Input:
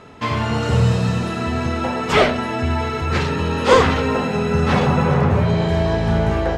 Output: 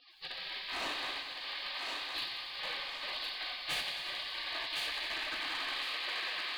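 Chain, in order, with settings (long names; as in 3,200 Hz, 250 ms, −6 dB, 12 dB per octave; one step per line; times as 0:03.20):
linear delta modulator 64 kbit/s, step −22 dBFS
gate on every frequency bin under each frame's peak −25 dB weak
Butterworth low-pass 4,700 Hz 96 dB per octave
low-shelf EQ 220 Hz −6 dB
gain into a clipping stage and back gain 28.5 dB
Butterworth band-reject 1,400 Hz, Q 8
feedback echo with a high-pass in the loop 1,061 ms, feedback 37%, high-pass 350 Hz, level −3.5 dB
feedback echo at a low word length 91 ms, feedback 80%, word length 10 bits, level −10 dB
level −4.5 dB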